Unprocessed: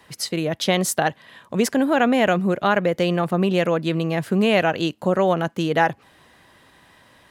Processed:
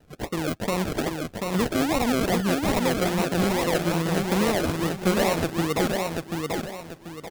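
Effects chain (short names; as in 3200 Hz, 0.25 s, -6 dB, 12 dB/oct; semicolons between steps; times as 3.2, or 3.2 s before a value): limiter -11 dBFS, peak gain reduction 6 dB; decimation with a swept rate 38×, swing 60% 2.4 Hz; feedback echo 0.737 s, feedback 34%, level -3.5 dB; gain -4 dB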